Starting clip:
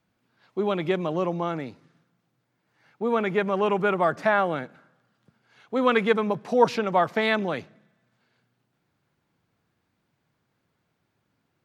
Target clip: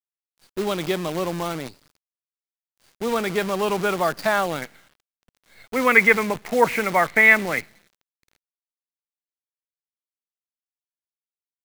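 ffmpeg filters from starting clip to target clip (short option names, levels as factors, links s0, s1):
-af "asetnsamples=n=441:p=0,asendcmd='4.62 lowpass f 2100',lowpass=f=4700:t=q:w=8.5,acrusher=bits=6:dc=4:mix=0:aa=0.000001"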